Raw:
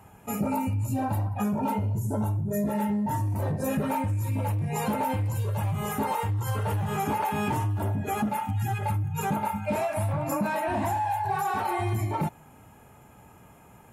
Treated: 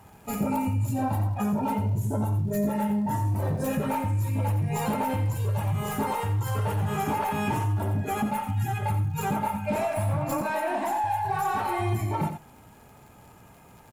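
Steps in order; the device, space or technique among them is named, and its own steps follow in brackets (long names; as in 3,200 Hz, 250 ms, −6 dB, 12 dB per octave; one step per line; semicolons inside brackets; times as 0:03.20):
0:10.41–0:11.04: high-pass filter 260 Hz 24 dB per octave
record under a worn stylus (stylus tracing distortion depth 0.024 ms; surface crackle; pink noise bed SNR 39 dB)
single-tap delay 88 ms −9 dB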